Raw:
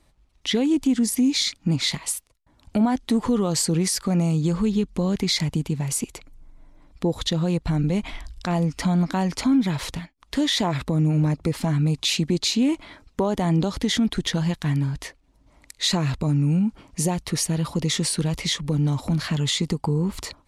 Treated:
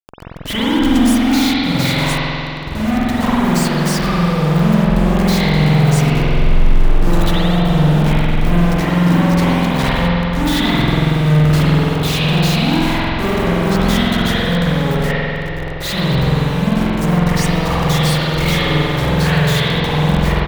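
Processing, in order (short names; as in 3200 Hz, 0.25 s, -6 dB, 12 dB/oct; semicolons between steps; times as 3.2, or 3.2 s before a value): low-pass opened by the level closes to 720 Hz, open at -17 dBFS; low shelf 440 Hz +8.5 dB; negative-ratio compressor -19 dBFS, ratio -0.5; companded quantiser 2-bit; fuzz box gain 26 dB, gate -33 dBFS; outdoor echo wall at 25 m, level -29 dB; spring tank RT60 2.9 s, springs 46 ms, chirp 80 ms, DRR -10 dB; gain -8 dB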